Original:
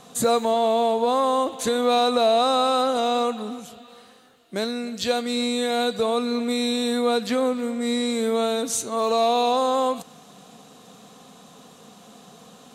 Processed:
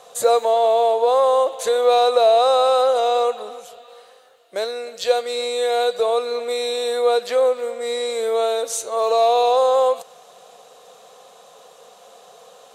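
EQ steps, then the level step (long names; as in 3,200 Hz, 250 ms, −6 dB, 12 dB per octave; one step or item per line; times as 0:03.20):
low shelf with overshoot 360 Hz −12.5 dB, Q 3
0.0 dB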